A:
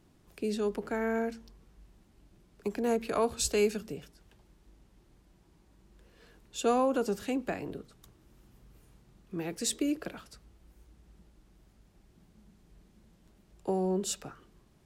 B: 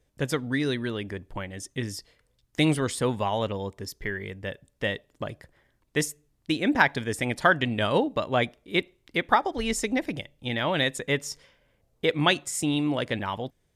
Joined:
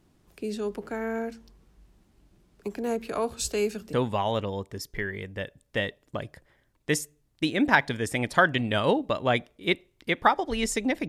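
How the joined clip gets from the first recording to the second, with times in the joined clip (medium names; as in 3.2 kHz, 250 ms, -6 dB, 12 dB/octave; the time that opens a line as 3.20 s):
A
3.93 s: go over to B from 3.00 s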